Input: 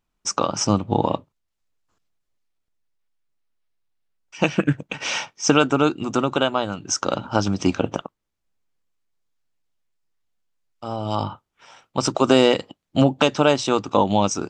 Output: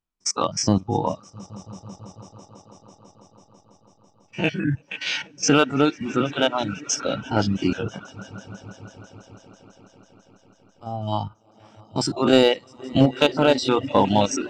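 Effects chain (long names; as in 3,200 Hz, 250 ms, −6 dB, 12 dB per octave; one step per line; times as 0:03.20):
spectrum averaged block by block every 50 ms
on a send: echo that builds up and dies away 165 ms, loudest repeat 5, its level −17 dB
on the sum: reverb reduction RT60 0.79 s
dynamic equaliser 4,100 Hz, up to +4 dB, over −47 dBFS, Q 2.7
noise reduction from a noise print of the clip's start 11 dB
in parallel at −11 dB: wave folding −11 dBFS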